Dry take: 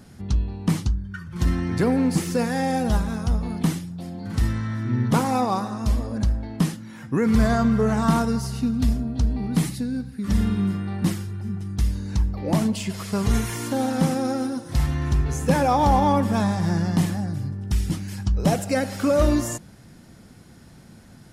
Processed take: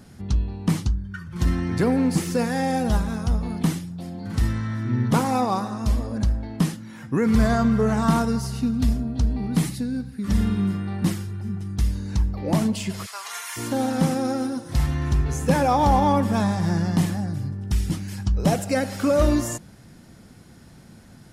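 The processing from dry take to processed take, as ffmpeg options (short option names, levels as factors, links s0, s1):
-filter_complex "[0:a]asplit=3[s0][s1][s2];[s0]afade=t=out:st=13.05:d=0.02[s3];[s1]highpass=f=870:w=0.5412,highpass=f=870:w=1.3066,afade=t=in:st=13.05:d=0.02,afade=t=out:st=13.56:d=0.02[s4];[s2]afade=t=in:st=13.56:d=0.02[s5];[s3][s4][s5]amix=inputs=3:normalize=0"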